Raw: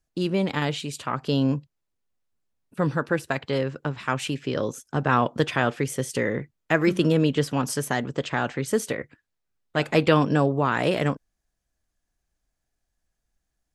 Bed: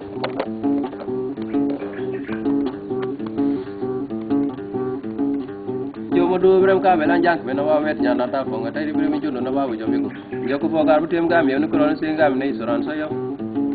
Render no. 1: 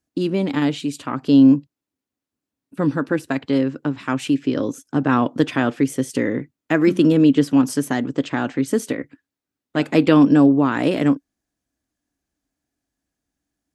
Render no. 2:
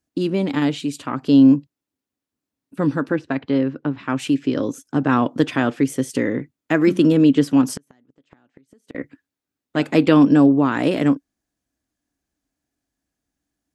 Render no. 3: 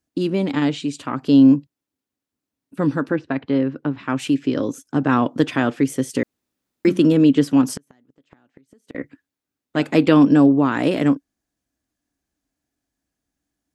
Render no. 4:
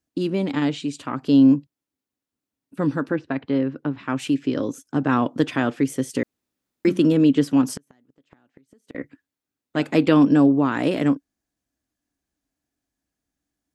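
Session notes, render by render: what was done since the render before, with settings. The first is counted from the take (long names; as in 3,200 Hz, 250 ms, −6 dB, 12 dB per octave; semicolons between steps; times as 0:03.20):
high-pass filter 72 Hz; parametric band 280 Hz +14.5 dB 0.47 octaves
0:03.12–0:04.16: high-frequency loss of the air 170 metres; 0:07.65–0:08.95: gate with flip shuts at −16 dBFS, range −37 dB
0:00.52–0:00.99: low-pass filter 8,600 Hz 24 dB per octave; 0:03.11–0:03.72: high-frequency loss of the air 83 metres; 0:06.23–0:06.85: fill with room tone
level −2.5 dB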